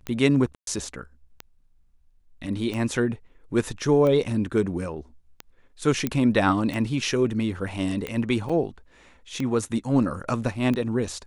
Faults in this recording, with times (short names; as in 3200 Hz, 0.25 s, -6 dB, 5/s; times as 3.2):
tick 45 rpm -17 dBFS
0.55–0.67 gap 0.122 s
6.07 pop -11 dBFS
8.49–8.5 gap 5.6 ms